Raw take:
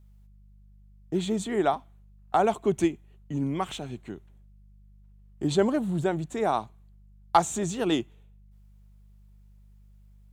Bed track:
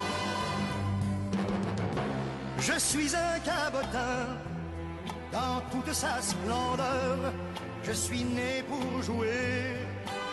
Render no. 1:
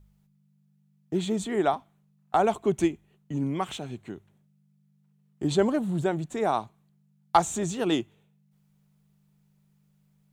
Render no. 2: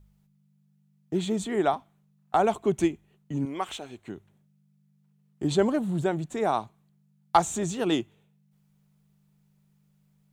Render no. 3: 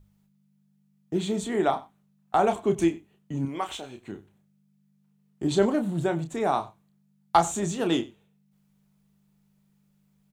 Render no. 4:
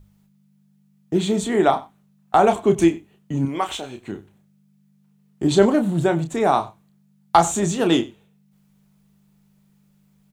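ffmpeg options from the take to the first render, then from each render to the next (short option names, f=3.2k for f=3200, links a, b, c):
-af "bandreject=f=50:t=h:w=4,bandreject=f=100:t=h:w=4"
-filter_complex "[0:a]asettb=1/sr,asplit=3[a][b][c];[a]atrim=end=3.454[d];[b]atrim=start=3.45:end=4.08,asetpts=PTS-STARTPTS,afade=t=in:d=0.004:c=qsin,afade=t=out:st=0.626:d=0.004:c=qsin,equalizer=f=150:t=o:w=1.2:g=-15[e];[c]atrim=start=4.076[f];[d][e]acrossfade=d=0.004:c1=hsin:c2=qsin[g];[g][f]acrossfade=d=0.004:c1=qsin:c2=hsin"
-filter_complex "[0:a]asplit=2[a][b];[b]adelay=30,volume=-7.5dB[c];[a][c]amix=inputs=2:normalize=0,asplit=2[d][e];[e]adelay=93.29,volume=-20dB,highshelf=f=4k:g=-2.1[f];[d][f]amix=inputs=2:normalize=0"
-af "volume=7dB,alimiter=limit=-2dB:level=0:latency=1"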